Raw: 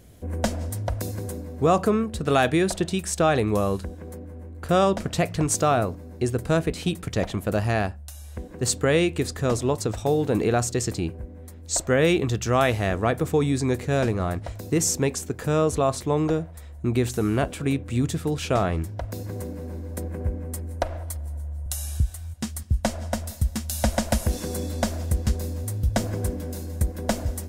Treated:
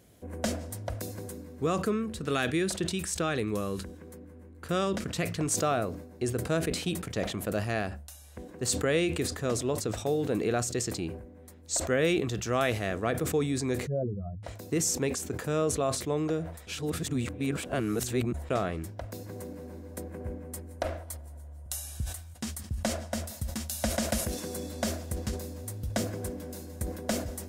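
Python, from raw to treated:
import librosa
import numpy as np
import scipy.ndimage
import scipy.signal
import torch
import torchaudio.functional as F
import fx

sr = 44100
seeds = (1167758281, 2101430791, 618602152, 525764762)

y = fx.peak_eq(x, sr, hz=680.0, db=-7.5, octaves=0.74, at=(1.28, 5.39))
y = fx.spec_expand(y, sr, power=3.5, at=(13.87, 14.43))
y = fx.edit(y, sr, fx.reverse_span(start_s=16.67, length_s=1.83), tone=tone)
y = fx.highpass(y, sr, hz=170.0, slope=6)
y = fx.dynamic_eq(y, sr, hz=900.0, q=3.0, threshold_db=-43.0, ratio=4.0, max_db=-7)
y = fx.sustainer(y, sr, db_per_s=76.0)
y = F.gain(torch.from_numpy(y), -5.0).numpy()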